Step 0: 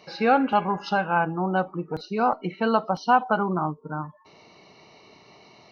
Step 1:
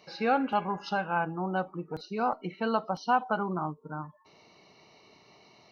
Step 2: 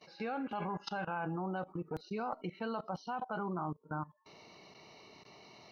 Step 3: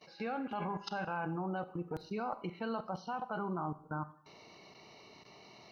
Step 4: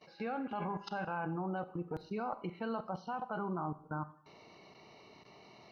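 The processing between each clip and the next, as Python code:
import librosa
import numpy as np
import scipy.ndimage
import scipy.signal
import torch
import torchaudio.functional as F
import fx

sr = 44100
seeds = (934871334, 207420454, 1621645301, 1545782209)

y1 = fx.high_shelf(x, sr, hz=5400.0, db=4.5)
y1 = y1 * 10.0 ** (-6.5 / 20.0)
y2 = fx.level_steps(y1, sr, step_db=20)
y2 = y2 * 10.0 ** (3.0 / 20.0)
y3 = fx.rev_schroeder(y2, sr, rt60_s=0.59, comb_ms=31, drr_db=13.5)
y4 = fx.high_shelf(y3, sr, hz=4100.0, db=-8.5)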